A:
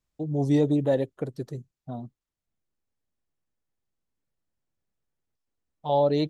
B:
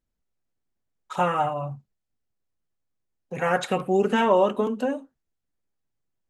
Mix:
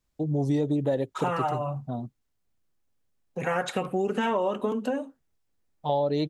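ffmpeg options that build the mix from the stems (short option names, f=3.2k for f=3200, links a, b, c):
-filter_complex "[0:a]volume=3dB[a];[1:a]acompressor=threshold=-30dB:ratio=1.5,adelay=50,volume=1.5dB[b];[a][b]amix=inputs=2:normalize=0,acompressor=threshold=-22dB:ratio=6"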